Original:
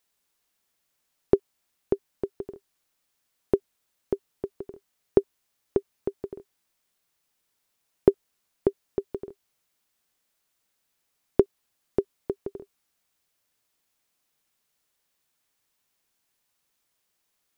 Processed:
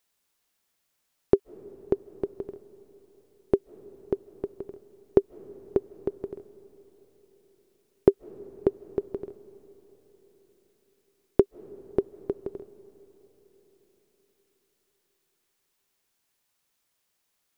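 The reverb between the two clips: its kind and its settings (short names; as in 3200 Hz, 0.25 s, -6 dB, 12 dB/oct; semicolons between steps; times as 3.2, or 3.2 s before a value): digital reverb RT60 4.6 s, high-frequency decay 0.5×, pre-delay 0.115 s, DRR 19.5 dB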